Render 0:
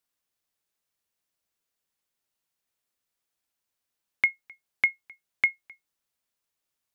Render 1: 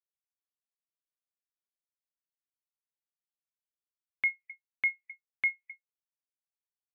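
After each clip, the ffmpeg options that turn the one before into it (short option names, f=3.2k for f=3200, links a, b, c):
-af "afftdn=nr=35:nf=-47,areverse,acompressor=threshold=-28dB:ratio=12,areverse,volume=2.5dB"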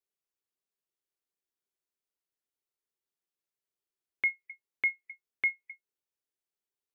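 -af "equalizer=f=390:w=2.8:g=11"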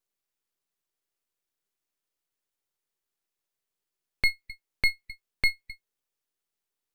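-af "aeval=exprs='max(val(0),0)':c=same,volume=8.5dB"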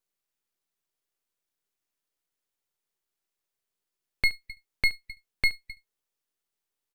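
-af "aecho=1:1:72:0.0891"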